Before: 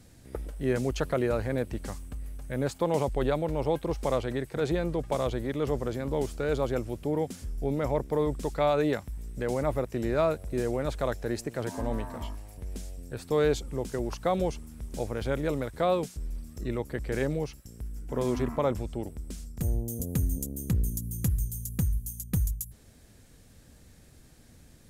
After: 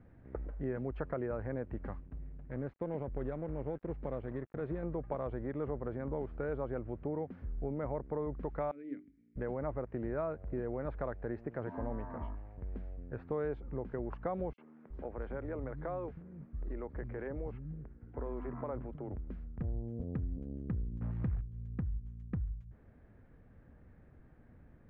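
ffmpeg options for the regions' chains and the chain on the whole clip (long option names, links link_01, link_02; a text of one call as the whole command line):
ffmpeg -i in.wav -filter_complex "[0:a]asettb=1/sr,asplit=3[link_01][link_02][link_03];[link_01]atrim=end=2.004[link_04];[link_02]atrim=start=2:end=4.83,asetpts=PTS-STARTPTS,afade=type=in:duration=0.004:curve=qsin,afade=type=out:start_time=2.826:duration=0.004:curve=qsin,equalizer=frequency=1000:width=0.93:gain=-10,aeval=exprs='sgn(val(0))*max(abs(val(0))-0.00596,0)':channel_layout=same[link_05];[link_03]atrim=start=4.826[link_06];[link_04][link_05]acrossfade=duration=0.004:curve1=hsin:curve2=qsin[link_07];[link_07][link_06]acrossfade=duration=0.004:curve1=qsin:curve2=hsin,asettb=1/sr,asplit=3[link_08][link_09][link_10];[link_08]atrim=end=8.714[link_11];[link_09]atrim=start=8.71:end=9.36,asetpts=PTS-STARTPTS,afade=type=in:duration=0.004:curve=qsin,afade=type=out:start_time=0.646:duration=0.004:curve=qsin,asplit=3[link_12][link_13][link_14];[link_12]bandpass=frequency=270:width_type=q:width=8,volume=0dB[link_15];[link_13]bandpass=frequency=2290:width_type=q:width=8,volume=-6dB[link_16];[link_14]bandpass=frequency=3010:width_type=q:width=8,volume=-9dB[link_17];[link_15][link_16][link_17]amix=inputs=3:normalize=0,bandreject=frequency=50:width_type=h:width=6,bandreject=frequency=100:width_type=h:width=6,bandreject=frequency=150:width_type=h:width=6,bandreject=frequency=200:width_type=h:width=6,bandreject=frequency=250:width_type=h:width=6,bandreject=frequency=300:width_type=h:width=6,bandreject=frequency=350:width_type=h:width=6,bandreject=frequency=400:width_type=h:width=6[link_18];[link_10]atrim=start=9.356[link_19];[link_11][link_18]acrossfade=duration=0.004:curve1=hsin:curve2=qsin[link_20];[link_20][link_19]acrossfade=duration=0.004:curve1=qsin:curve2=hsin,asettb=1/sr,asplit=3[link_21][link_22][link_23];[link_21]atrim=end=14.534[link_24];[link_22]atrim=start=14.53:end=19.16,asetpts=PTS-STARTPTS,afade=type=in:duration=0.004:curve=qsin,afade=type=out:start_time=4.626:duration=0.004:curve=qsin,acompressor=threshold=-31dB:ratio=3:attack=3.2:release=140:knee=1:detection=peak,acrossover=split=210|4000[link_25][link_26][link_27];[link_26]adelay=50[link_28];[link_25]adelay=370[link_29];[link_29][link_28][link_27]amix=inputs=3:normalize=0,atrim=end_sample=204183[link_30];[link_23]atrim=start=19.156[link_31];[link_24][link_30]acrossfade=duration=0.004:curve1=hsin:curve2=qsin[link_32];[link_32][link_31]acrossfade=duration=0.004:curve1=qsin:curve2=hsin,asettb=1/sr,asplit=3[link_33][link_34][link_35];[link_33]atrim=end=21.014[link_36];[link_34]atrim=start=21.01:end=21.41,asetpts=PTS-STARTPTS,afade=type=in:duration=0.004:curve=qsin,afade=type=out:start_time=0.396:duration=0.004:curve=qsin,acontrast=77,acrusher=bits=7:dc=4:mix=0:aa=0.000001[link_37];[link_35]atrim=start=21.406[link_38];[link_36][link_37]acrossfade=duration=0.004:curve1=hsin:curve2=qsin[link_39];[link_39][link_38]acrossfade=duration=0.004:curve1=qsin:curve2=hsin,acompressor=threshold=-31dB:ratio=3,lowpass=frequency=1800:width=0.5412,lowpass=frequency=1800:width=1.3066,volume=-3.5dB" out.wav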